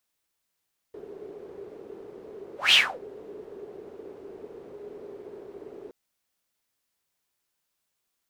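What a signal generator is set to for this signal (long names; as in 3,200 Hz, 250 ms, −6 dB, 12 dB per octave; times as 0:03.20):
pass-by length 4.97 s, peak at 0:01.79, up 0.18 s, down 0.28 s, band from 410 Hz, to 3,200 Hz, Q 8.6, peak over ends 27 dB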